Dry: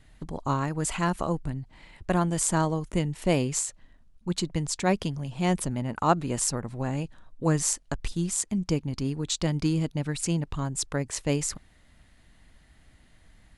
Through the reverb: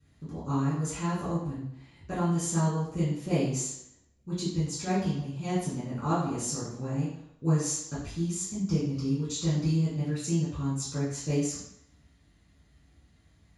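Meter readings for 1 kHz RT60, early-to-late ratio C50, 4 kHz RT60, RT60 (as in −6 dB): 0.70 s, 2.0 dB, 0.65 s, 0.70 s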